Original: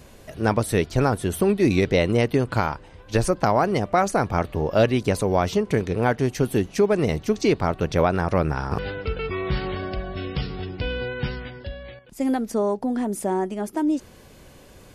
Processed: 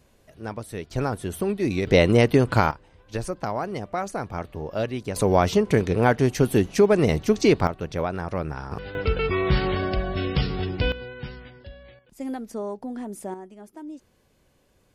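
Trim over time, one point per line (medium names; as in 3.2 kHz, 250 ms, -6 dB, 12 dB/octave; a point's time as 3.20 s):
-12.5 dB
from 0.91 s -5.5 dB
from 1.87 s +3 dB
from 2.71 s -8.5 dB
from 5.16 s +2 dB
from 7.67 s -7 dB
from 8.95 s +4 dB
from 10.92 s -8.5 dB
from 13.34 s -16 dB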